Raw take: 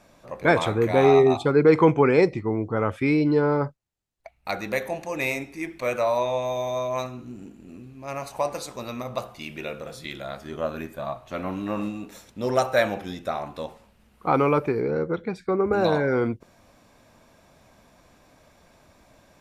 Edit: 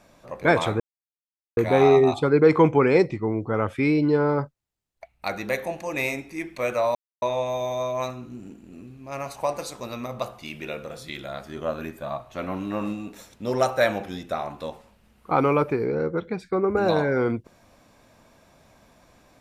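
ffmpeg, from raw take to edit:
-filter_complex "[0:a]asplit=3[a][b][c];[a]atrim=end=0.8,asetpts=PTS-STARTPTS,afade=t=out:st=0.796:d=0.004:c=hsin,apad=pad_dur=0.77[d];[b]atrim=start=0.8:end=6.18,asetpts=PTS-STARTPTS,afade=t=in:d=0.004:c=hsin,afade=t=out:st=5.376:d=0.004:c=hsin,apad=pad_dur=0.27[e];[c]atrim=start=6.18,asetpts=PTS-STARTPTS,afade=t=in:d=0.004:c=hsin[f];[d][e][f]concat=n=3:v=0:a=1"

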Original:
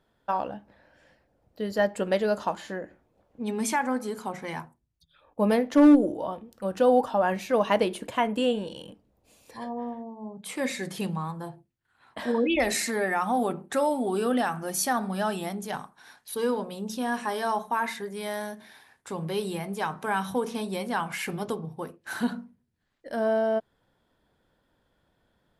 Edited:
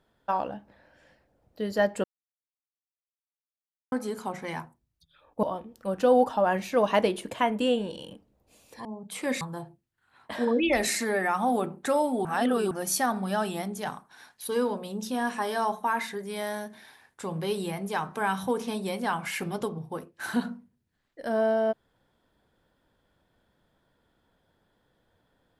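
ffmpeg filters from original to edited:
-filter_complex "[0:a]asplit=8[a][b][c][d][e][f][g][h];[a]atrim=end=2.04,asetpts=PTS-STARTPTS,afade=t=out:st=2.036:d=0.004:c=hsin[i];[b]atrim=start=2.04:end=3.92,asetpts=PTS-STARTPTS,volume=0[j];[c]atrim=start=3.92:end=5.432,asetpts=PTS-STARTPTS,afade=t=in:d=0.004:c=hsin[k];[d]atrim=start=6.198:end=9.622[l];[e]atrim=start=10.188:end=10.752[m];[f]atrim=start=11.278:end=14.122[n];[g]atrim=start=14.118:end=14.582,asetpts=PTS-STARTPTS,areverse[o];[h]atrim=start=14.578[p];[i][j][k]concat=n=3:v=0:a=1[q];[q][l]acrossfade=d=0.004:c1=hsin:c2=hsin[r];[r][m]acrossfade=d=0.004:c1=hsin:c2=hsin[s];[s][n]acrossfade=d=0.004:c1=hsin:c2=hsin[t];[t][o]acrossfade=d=0.004:c1=hsin:c2=hsin[u];[u][p]acrossfade=d=0.004:c1=hsin:c2=hsin"

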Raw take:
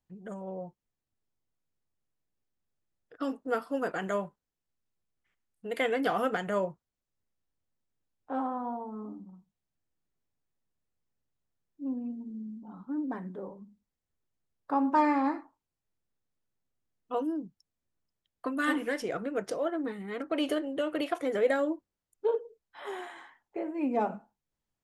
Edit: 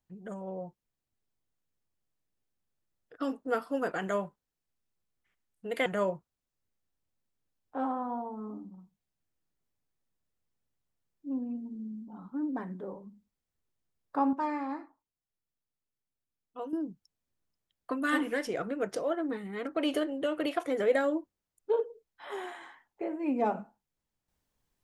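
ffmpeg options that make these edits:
-filter_complex "[0:a]asplit=4[a][b][c][d];[a]atrim=end=5.862[e];[b]atrim=start=6.408:end=14.882[f];[c]atrim=start=14.878:end=17.282,asetpts=PTS-STARTPTS,volume=-8dB[g];[d]atrim=start=17.278[h];[e][f]acrossfade=d=0.004:c1=hsin:c2=hsin[i];[i][g]acrossfade=d=0.004:c1=hsin:c2=hsin[j];[j][h]acrossfade=d=0.004:c1=hsin:c2=hsin"

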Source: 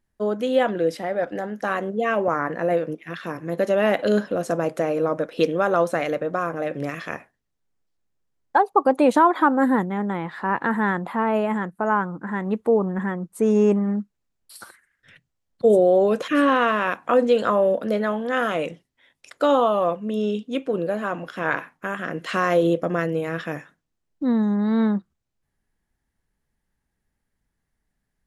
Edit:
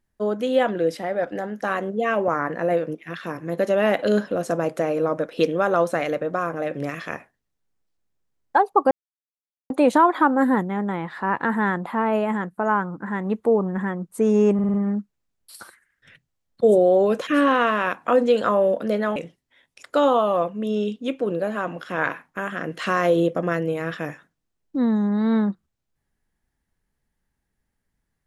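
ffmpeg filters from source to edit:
-filter_complex "[0:a]asplit=7[a][b][c][d][e][f][g];[a]atrim=end=8.91,asetpts=PTS-STARTPTS,afade=t=out:st=8.906:d=0.004:c=hsin,apad=pad_dur=0.79[h];[b]atrim=start=8.91:end=13.802,asetpts=PTS-STARTPTS,afade=t=in:d=0.004:c=hsin[i];[c]atrim=start=13.748:end=13.802[j];[d]atrim=start=13.748:end=13.802[k];[e]atrim=start=13.748:end=13.802[l];[f]atrim=start=13.748:end=18.172[m];[g]atrim=start=18.628[n];[h][i]concat=n=2:v=0:a=1[o];[o][j]acrossfade=d=0.004:c1=hsin:c2=hsin[p];[p][k]acrossfade=d=0.004:c1=hsin:c2=hsin[q];[q][l]acrossfade=d=0.004:c1=hsin:c2=hsin[r];[r][m]acrossfade=d=0.004:c1=hsin:c2=hsin[s];[s][n]acrossfade=d=0.004:c1=hsin:c2=hsin"

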